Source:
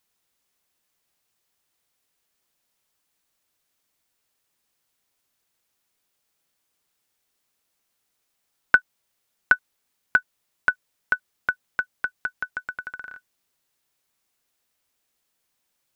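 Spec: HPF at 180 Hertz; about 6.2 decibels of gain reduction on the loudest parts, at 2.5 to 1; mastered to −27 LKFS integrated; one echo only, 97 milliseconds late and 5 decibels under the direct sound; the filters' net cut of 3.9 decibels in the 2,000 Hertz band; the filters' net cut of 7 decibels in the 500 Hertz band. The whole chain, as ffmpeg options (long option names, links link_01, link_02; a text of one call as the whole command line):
ffmpeg -i in.wav -af "highpass=180,equalizer=frequency=500:width_type=o:gain=-9,equalizer=frequency=2000:width_type=o:gain=-5.5,acompressor=threshold=-26dB:ratio=2.5,aecho=1:1:97:0.562,volume=7.5dB" out.wav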